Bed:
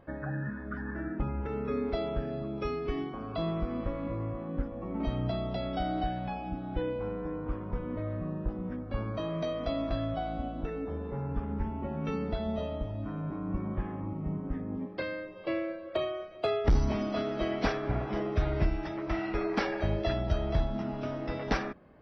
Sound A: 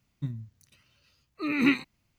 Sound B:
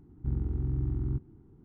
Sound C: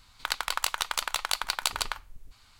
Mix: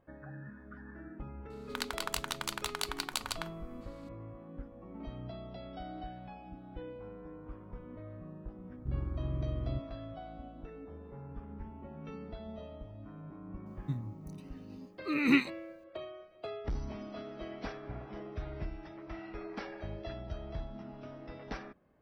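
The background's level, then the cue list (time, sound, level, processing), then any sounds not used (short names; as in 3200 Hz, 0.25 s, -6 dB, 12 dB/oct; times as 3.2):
bed -12 dB
1.5 add C -7.5 dB
8.61 add B -5 dB + backlash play -59 dBFS
13.66 add A -2.5 dB + notch 3200 Hz, Q 29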